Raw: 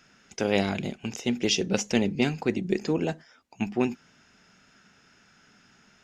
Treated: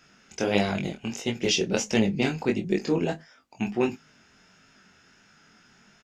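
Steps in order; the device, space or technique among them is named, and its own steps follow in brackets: double-tracked vocal (doubling 26 ms -13 dB; chorus 1.5 Hz, delay 18.5 ms, depth 5.5 ms); trim +4 dB

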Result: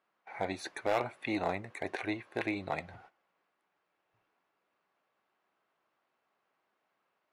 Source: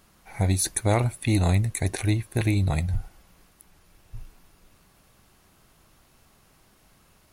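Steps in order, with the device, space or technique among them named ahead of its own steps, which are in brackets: walkie-talkie (band-pass 480–2200 Hz; hard clipper -22 dBFS, distortion -11 dB; gate -56 dBFS, range -14 dB); 1.38–1.88 s: dynamic bell 3.7 kHz, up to -4 dB, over -49 dBFS, Q 0.75

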